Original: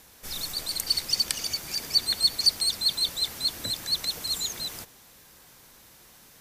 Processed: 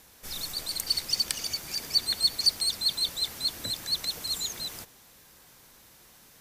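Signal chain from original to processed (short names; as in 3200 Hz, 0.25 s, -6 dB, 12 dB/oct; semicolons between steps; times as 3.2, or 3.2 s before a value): block floating point 7-bit; gain -2 dB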